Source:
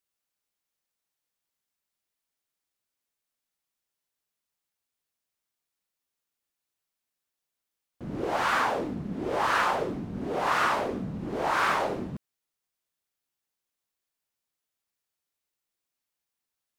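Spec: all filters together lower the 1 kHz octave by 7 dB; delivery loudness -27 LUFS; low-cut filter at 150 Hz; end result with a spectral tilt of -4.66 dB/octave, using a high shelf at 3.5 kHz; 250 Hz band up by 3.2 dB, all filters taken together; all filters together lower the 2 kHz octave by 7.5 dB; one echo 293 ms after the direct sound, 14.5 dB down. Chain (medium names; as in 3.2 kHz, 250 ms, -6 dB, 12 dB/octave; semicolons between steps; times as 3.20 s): high-pass 150 Hz; peaking EQ 250 Hz +5.5 dB; peaking EQ 1 kHz -7 dB; peaking EQ 2 kHz -5 dB; treble shelf 3.5 kHz -8.5 dB; delay 293 ms -14.5 dB; trim +4.5 dB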